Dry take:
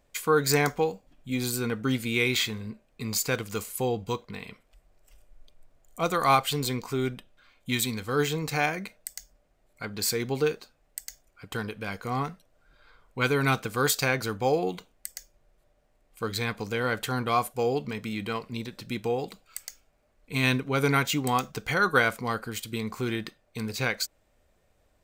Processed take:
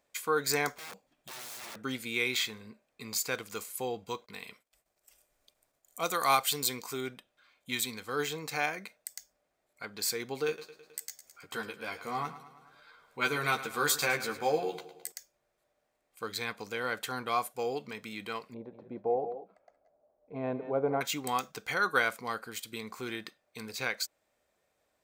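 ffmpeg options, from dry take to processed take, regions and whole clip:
ffmpeg -i in.wav -filter_complex "[0:a]asettb=1/sr,asplit=3[link_01][link_02][link_03];[link_01]atrim=end=0.744[link_04];[link_02]atrim=start=0.74:end=1.76,asetpts=PTS-STARTPTS,afade=type=in:duration=0.004:curve=qsin,afade=type=out:start_time=1.016:duration=0.004:curve=qsin,acompressor=threshold=-29dB:ratio=12:attack=3.2:release=140:knee=1:detection=peak,aeval=exprs='(mod(53.1*val(0)+1,2)-1)/53.1':channel_layout=same[link_05];[link_03]atrim=start=1.756[link_06];[link_04][link_05]acrossfade=duration=0.004:curve1=hsin:curve2=qsin[link_07];[link_07][link_06]acrossfade=duration=0.004:curve1=qsin:curve2=hsin,asettb=1/sr,asplit=3[link_08][link_09][link_10];[link_08]atrim=end=4.264[link_11];[link_09]atrim=start=4.26:end=7.01,asetpts=PTS-STARTPTS,afade=type=in:duration=0.004:curve=qsin,afade=type=out:start_time=2.746:duration=0.004:curve=qsin,highshelf=frequency=4900:gain=10,agate=range=-33dB:threshold=-57dB:ratio=3:release=100:detection=peak[link_12];[link_10]atrim=start=7.006[link_13];[link_11][link_12]acrossfade=duration=0.004:curve1=hsin:curve2=qsin[link_14];[link_14][link_13]acrossfade=duration=0.004:curve1=qsin:curve2=hsin,asettb=1/sr,asplit=3[link_15][link_16][link_17];[link_15]atrim=end=10.474[link_18];[link_16]atrim=start=10.47:end=15.12,asetpts=PTS-STARTPTS,afade=type=in:duration=0.004:curve=qsin,afade=type=out:start_time=4.646:duration=0.004:curve=qsin,aecho=1:1:107|214|321|428|535:0.2|0.106|0.056|0.0297|0.0157,atrim=end_sample=205065,acompressor=mode=upward:threshold=-44dB:ratio=2.5:attack=3.2:release=140:knee=2.83:detection=peak,asplit=2[link_19][link_20];[link_20]adelay=13,volume=-3dB[link_21];[link_19][link_21]amix=inputs=2:normalize=0,atrim=end_sample=205065[link_22];[link_17]atrim=start=15.116[link_23];[link_18][link_22]acrossfade=duration=0.004:curve1=hsin:curve2=qsin[link_24];[link_24][link_23]acrossfade=duration=0.004:curve1=qsin:curve2=hsin,asettb=1/sr,asplit=3[link_25][link_26][link_27];[link_25]atrim=end=18.544[link_28];[link_26]atrim=start=18.54:end=21.01,asetpts=PTS-STARTPTS,afade=type=in:duration=0.004:curve=qsin,afade=type=out:start_time=2.466:duration=0.004:curve=qsin,lowpass=frequency=650:width_type=q:width=3.3,aecho=1:1:170|181|191:0.106|0.237|0.141,atrim=end_sample=108927[link_29];[link_27]atrim=start=21.006[link_30];[link_28][link_29]acrossfade=duration=0.004:curve1=hsin:curve2=qsin[link_31];[link_31][link_30]acrossfade=duration=0.004:curve1=qsin:curve2=hsin,highpass=frequency=470:poles=1,bandreject=frequency=2900:width=21,volume=-4dB" out.wav

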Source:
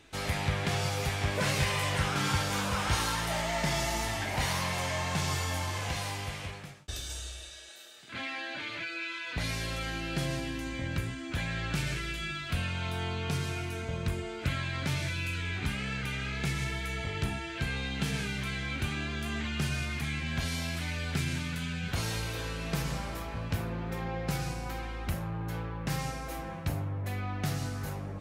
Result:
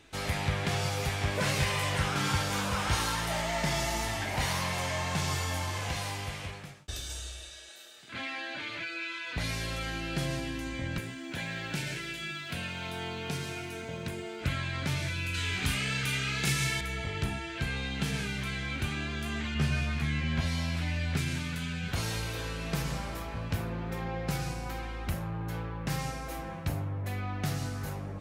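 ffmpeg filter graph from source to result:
ffmpeg -i in.wav -filter_complex "[0:a]asettb=1/sr,asplit=3[link_01][link_02][link_03];[link_01]atrim=end=10.984[link_04];[link_02]atrim=start=10.98:end=14.41,asetpts=PTS-STARTPTS,afade=type=in:duration=0.004:curve=qsin,afade=type=out:start_time=3.426:duration=0.004:curve=qsin,highpass=150,bandreject=frequency=1200:width=5,aeval=exprs='sgn(val(0))*max(abs(val(0))-0.00106,0)':channel_layout=same[link_05];[link_03]atrim=start=14.406[link_06];[link_04][link_05]acrossfade=duration=0.004:curve1=hsin:curve2=qsin[link_07];[link_07][link_06]acrossfade=duration=0.004:curve1=qsin:curve2=hsin,asettb=1/sr,asplit=3[link_08][link_09][link_10];[link_08]atrim=end=15.344[link_11];[link_09]atrim=start=15.34:end=16.81,asetpts=PTS-STARTPTS,afade=type=in:duration=0.004:curve=qsin,afade=type=out:start_time=1.466:duration=0.004:curve=qsin,highshelf=frequency=3100:gain=10.5,asplit=2[link_12][link_13];[link_13]adelay=37,volume=-4.5dB[link_14];[link_12][link_14]amix=inputs=2:normalize=0,atrim=end_sample=64827[link_15];[link_10]atrim=start=16.806[link_16];[link_11][link_15]acrossfade=duration=0.004:curve1=hsin:curve2=qsin[link_17];[link_17][link_16]acrossfade=duration=0.004:curve1=qsin:curve2=hsin,asettb=1/sr,asplit=3[link_18][link_19][link_20];[link_18]atrim=end=19.544[link_21];[link_19]atrim=start=19.54:end=21.17,asetpts=PTS-STARTPTS,afade=type=in:duration=0.004:curve=qsin,afade=type=out:start_time=1.626:duration=0.004:curve=qsin,lowpass=frequency=3700:poles=1,asplit=2[link_22][link_23];[link_23]adelay=13,volume=-3dB[link_24];[link_22][link_24]amix=inputs=2:normalize=0,atrim=end_sample=71883[link_25];[link_20]atrim=start=21.166[link_26];[link_21][link_25]acrossfade=duration=0.004:curve1=hsin:curve2=qsin[link_27];[link_27][link_26]acrossfade=duration=0.004:curve1=qsin:curve2=hsin" out.wav

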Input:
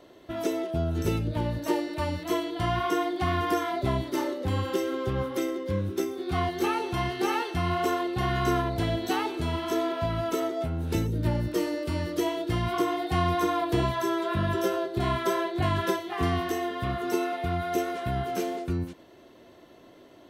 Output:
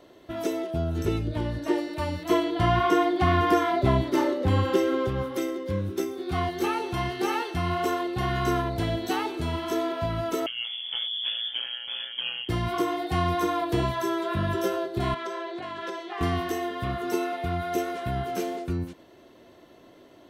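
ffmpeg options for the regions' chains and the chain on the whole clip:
ffmpeg -i in.wav -filter_complex "[0:a]asettb=1/sr,asplit=3[link_01][link_02][link_03];[link_01]atrim=end=1.054[link_04];[link_02]atrim=start=1.05:end=1.78,asetpts=PTS-STARTPTS,afade=type=in:duration=0.004:curve=qsin,afade=type=out:start_time=0.726:duration=0.004:curve=qsin,lowpass=11000,acrossover=split=4100[link_05][link_06];[link_06]acompressor=threshold=-50dB:ratio=4:attack=1:release=60[link_07];[link_05][link_07]amix=inputs=2:normalize=0,aecho=1:1:2.8:0.36,atrim=end_sample=32193[link_08];[link_03]atrim=start=1.776[link_09];[link_04][link_08]acrossfade=duration=0.004:curve1=hsin:curve2=qsin[link_10];[link_10][link_09]acrossfade=duration=0.004:curve1=qsin:curve2=hsin,asettb=1/sr,asplit=3[link_11][link_12][link_13];[link_11]atrim=end=2.294[link_14];[link_12]atrim=start=2.29:end=5.07,asetpts=PTS-STARTPTS,afade=type=in:duration=0.004:curve=qsin,afade=type=out:start_time=2.776:duration=0.004:curve=qsin,highshelf=frequency=4900:gain=-8.5,acontrast=33[link_15];[link_13]atrim=start=5.066[link_16];[link_14][link_15]acrossfade=duration=0.004:curve1=hsin:curve2=qsin[link_17];[link_17][link_16]acrossfade=duration=0.004:curve1=qsin:curve2=hsin,asettb=1/sr,asplit=3[link_18][link_19][link_20];[link_18]atrim=end=10.464[link_21];[link_19]atrim=start=10.46:end=12.49,asetpts=PTS-STARTPTS,afade=type=in:duration=0.004:curve=qsin,afade=type=out:start_time=2.026:duration=0.004:curve=qsin,aecho=1:1:7.4:0.39,atrim=end_sample=89523,tremolo=f=120:d=1,lowpass=frequency=3000:width_type=q:width=0.5098,lowpass=frequency=3000:width_type=q:width=0.6013,lowpass=frequency=3000:width_type=q:width=0.9,lowpass=frequency=3000:width_type=q:width=2.563,afreqshift=-3500[link_22];[link_20]atrim=start=12.486[link_23];[link_21][link_22]acrossfade=duration=0.004:curve1=hsin:curve2=qsin[link_24];[link_24][link_23]acrossfade=duration=0.004:curve1=qsin:curve2=hsin,asettb=1/sr,asplit=3[link_25][link_26][link_27];[link_25]atrim=end=15.144[link_28];[link_26]atrim=start=15.14:end=16.21,asetpts=PTS-STARTPTS,afade=type=in:duration=0.004:curve=qsin,afade=type=out:start_time=1.066:duration=0.004:curve=qsin,acompressor=threshold=-29dB:ratio=4:attack=3.2:release=140:knee=1:detection=peak,highpass=330,lowpass=6000[link_29];[link_27]atrim=start=16.206[link_30];[link_28][link_29]acrossfade=duration=0.004:curve1=hsin:curve2=qsin[link_31];[link_31][link_30]acrossfade=duration=0.004:curve1=qsin:curve2=hsin" out.wav

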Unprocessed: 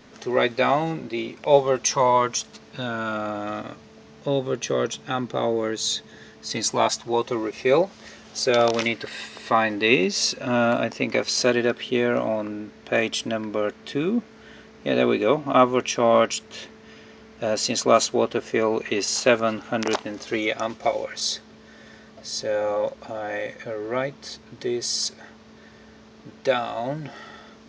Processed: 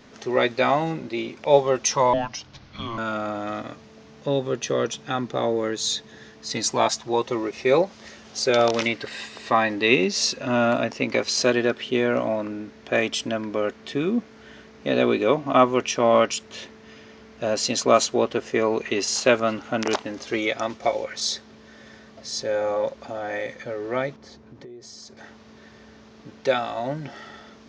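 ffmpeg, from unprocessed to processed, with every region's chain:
ffmpeg -i in.wav -filter_complex "[0:a]asettb=1/sr,asplit=3[link_01][link_02][link_03];[link_01]atrim=end=2.134[link_04];[link_02]atrim=start=2.13:end=2.98,asetpts=PTS-STARTPTS,afade=type=in:duration=0.004:curve=qsin,afade=type=out:start_time=0.846:duration=0.004:curve=qsin,lowpass=frequency=6400:width=0.5412,lowpass=frequency=6400:width=1.3066,afreqshift=-350,acrossover=split=280|830|1800[link_05][link_06][link_07][link_08];[link_05]acompressor=threshold=-36dB:ratio=3[link_09];[link_06]acompressor=threshold=-25dB:ratio=3[link_10];[link_07]acompressor=threshold=-36dB:ratio=3[link_11];[link_08]acompressor=threshold=-35dB:ratio=3[link_12];[link_09][link_10][link_11][link_12]amix=inputs=4:normalize=0[link_13];[link_03]atrim=start=2.976[link_14];[link_04][link_13]acrossfade=duration=0.004:curve1=hsin:curve2=qsin[link_15];[link_15][link_14]acrossfade=duration=0.004:curve1=qsin:curve2=hsin,asettb=1/sr,asplit=3[link_16][link_17][link_18];[link_16]atrim=end=24.164[link_19];[link_17]atrim=start=24.16:end=25.17,asetpts=PTS-STARTPTS,afade=type=in:duration=0.004:curve=qsin,afade=type=out:start_time=1.006:duration=0.004:curve=qsin,lowpass=frequency=7000:width=0.5412,lowpass=frequency=7000:width=1.3066,equalizer=frequency=4300:width=0.41:gain=-12.5,acompressor=threshold=-39dB:ratio=8:attack=3.2:release=140:knee=1:detection=peak[link_20];[link_18]atrim=start=25.166[link_21];[link_19][link_20]acrossfade=duration=0.004:curve1=hsin:curve2=qsin[link_22];[link_22][link_21]acrossfade=duration=0.004:curve1=qsin:curve2=hsin" out.wav

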